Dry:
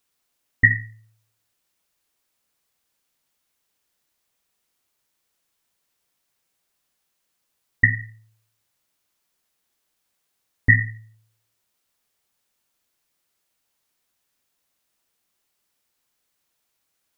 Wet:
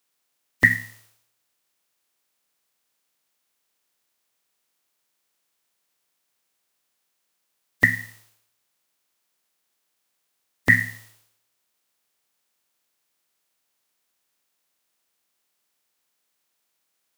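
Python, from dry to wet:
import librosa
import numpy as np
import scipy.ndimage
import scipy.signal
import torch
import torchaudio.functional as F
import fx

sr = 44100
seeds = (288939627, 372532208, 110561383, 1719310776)

y = fx.spec_flatten(x, sr, power=0.53)
y = fx.highpass(y, sr, hz=210.0, slope=6)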